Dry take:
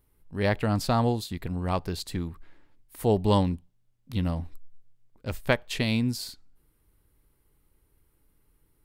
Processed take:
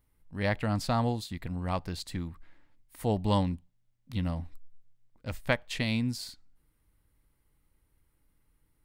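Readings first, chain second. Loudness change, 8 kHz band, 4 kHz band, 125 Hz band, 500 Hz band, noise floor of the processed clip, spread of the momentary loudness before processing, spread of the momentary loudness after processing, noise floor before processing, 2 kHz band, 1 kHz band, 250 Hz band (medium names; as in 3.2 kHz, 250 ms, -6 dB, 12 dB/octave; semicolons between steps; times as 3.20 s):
-4.0 dB, -4.0 dB, -3.5 dB, -3.5 dB, -6.0 dB, -73 dBFS, 14 LU, 13 LU, -69 dBFS, -2.0 dB, -3.5 dB, -4.0 dB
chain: graphic EQ with 31 bands 400 Hz -8 dB, 2 kHz +3 dB, 12.5 kHz -6 dB; trim -3.5 dB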